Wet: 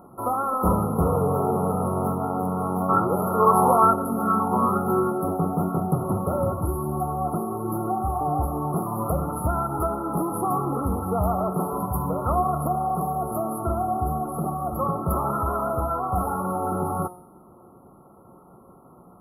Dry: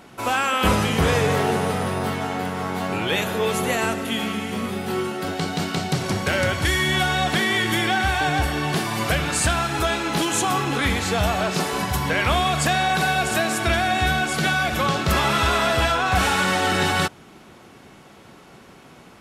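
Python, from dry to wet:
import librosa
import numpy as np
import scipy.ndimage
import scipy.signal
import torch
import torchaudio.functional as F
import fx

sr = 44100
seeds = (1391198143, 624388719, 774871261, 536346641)

y = fx.rider(x, sr, range_db=10, speed_s=2.0)
y = fx.brickwall_bandstop(y, sr, low_hz=1400.0, high_hz=10000.0)
y = fx.comb_fb(y, sr, f0_hz=180.0, decay_s=0.7, harmonics='all', damping=0.0, mix_pct=70)
y = fx.bell_lfo(y, sr, hz=1.1, low_hz=910.0, high_hz=2000.0, db=16, at=(2.88, 5.1), fade=0.02)
y = y * 10.0 ** (7.5 / 20.0)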